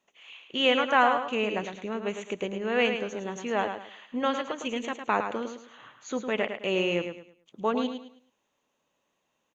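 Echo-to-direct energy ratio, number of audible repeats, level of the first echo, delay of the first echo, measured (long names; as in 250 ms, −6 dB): −7.0 dB, 3, −7.5 dB, 107 ms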